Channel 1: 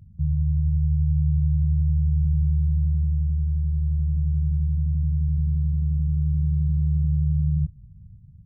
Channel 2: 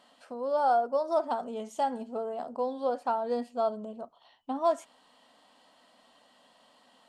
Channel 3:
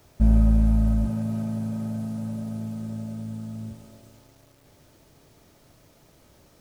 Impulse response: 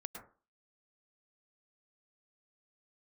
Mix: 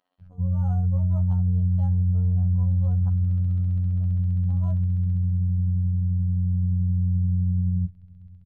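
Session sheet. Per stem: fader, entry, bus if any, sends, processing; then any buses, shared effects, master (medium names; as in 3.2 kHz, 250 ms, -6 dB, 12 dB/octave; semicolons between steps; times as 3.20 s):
+1.5 dB, 0.20 s, no send, none
-16.0 dB, 0.00 s, muted 3.09–3.91 s, no send, none
5.11 s -6.5 dB -> 5.56 s -17 dB, 2.20 s, no send, peaking EQ 860 Hz -9 dB 1.8 oct; peak limiter -21.5 dBFS, peak gain reduction 12 dB; endless flanger 9.3 ms +0.37 Hz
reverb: none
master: robot voice 90.6 Hz; decimation joined by straight lines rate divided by 6×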